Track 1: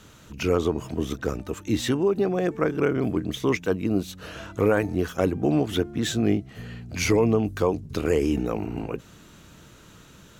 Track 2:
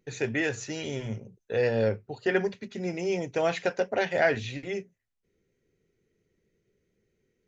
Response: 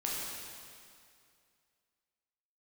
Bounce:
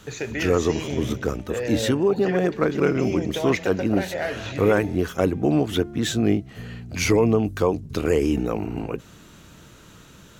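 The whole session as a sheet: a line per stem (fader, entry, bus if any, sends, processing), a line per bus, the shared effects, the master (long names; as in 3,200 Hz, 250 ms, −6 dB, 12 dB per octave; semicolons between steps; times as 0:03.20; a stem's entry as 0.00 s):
+2.0 dB, 0.00 s, no send, no processing
+3.0 dB, 0.00 s, send −12.5 dB, downward compressor 3 to 1, threshold −32 dBFS, peak gain reduction 10.5 dB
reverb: on, RT60 2.3 s, pre-delay 8 ms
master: no processing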